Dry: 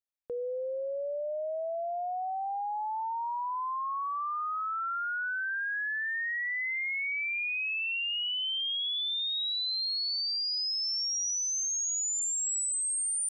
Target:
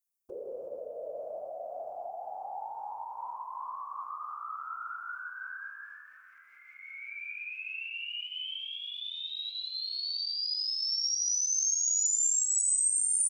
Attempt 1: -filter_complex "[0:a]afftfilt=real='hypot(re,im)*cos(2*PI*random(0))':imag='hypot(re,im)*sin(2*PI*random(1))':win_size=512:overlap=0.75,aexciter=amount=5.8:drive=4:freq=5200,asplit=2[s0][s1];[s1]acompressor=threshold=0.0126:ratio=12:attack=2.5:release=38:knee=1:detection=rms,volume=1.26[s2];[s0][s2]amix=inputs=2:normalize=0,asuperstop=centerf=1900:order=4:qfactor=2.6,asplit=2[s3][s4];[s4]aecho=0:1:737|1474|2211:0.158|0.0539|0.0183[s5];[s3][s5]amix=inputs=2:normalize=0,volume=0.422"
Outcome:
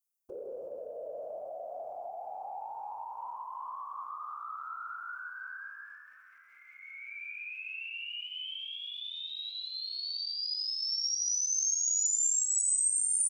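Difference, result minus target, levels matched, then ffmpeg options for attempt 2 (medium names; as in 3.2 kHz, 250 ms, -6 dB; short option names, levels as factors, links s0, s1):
compression: peak gain reduction +6 dB
-filter_complex "[0:a]afftfilt=real='hypot(re,im)*cos(2*PI*random(0))':imag='hypot(re,im)*sin(2*PI*random(1))':win_size=512:overlap=0.75,aexciter=amount=5.8:drive=4:freq=5200,asplit=2[s0][s1];[s1]acompressor=threshold=0.0266:ratio=12:attack=2.5:release=38:knee=1:detection=rms,volume=1.26[s2];[s0][s2]amix=inputs=2:normalize=0,asuperstop=centerf=1900:order=4:qfactor=2.6,asplit=2[s3][s4];[s4]aecho=0:1:737|1474|2211:0.158|0.0539|0.0183[s5];[s3][s5]amix=inputs=2:normalize=0,volume=0.422"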